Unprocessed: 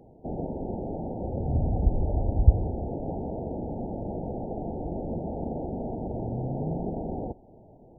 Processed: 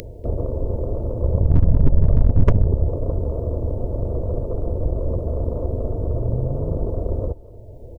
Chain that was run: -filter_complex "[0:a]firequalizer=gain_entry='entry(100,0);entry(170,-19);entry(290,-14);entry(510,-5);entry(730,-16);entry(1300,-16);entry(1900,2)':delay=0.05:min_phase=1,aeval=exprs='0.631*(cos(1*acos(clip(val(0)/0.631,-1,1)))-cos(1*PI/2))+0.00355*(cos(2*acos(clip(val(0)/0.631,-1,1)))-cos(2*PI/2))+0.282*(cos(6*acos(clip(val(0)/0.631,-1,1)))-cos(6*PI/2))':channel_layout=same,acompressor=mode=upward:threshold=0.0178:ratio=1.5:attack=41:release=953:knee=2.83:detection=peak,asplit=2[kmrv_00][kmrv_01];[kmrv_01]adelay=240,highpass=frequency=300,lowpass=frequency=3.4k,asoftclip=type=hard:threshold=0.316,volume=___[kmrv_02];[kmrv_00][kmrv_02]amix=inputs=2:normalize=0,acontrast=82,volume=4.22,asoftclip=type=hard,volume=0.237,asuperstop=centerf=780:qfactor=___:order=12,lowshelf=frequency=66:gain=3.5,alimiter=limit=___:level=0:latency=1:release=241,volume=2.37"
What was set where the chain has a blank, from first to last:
0.112, 6.9, 0.224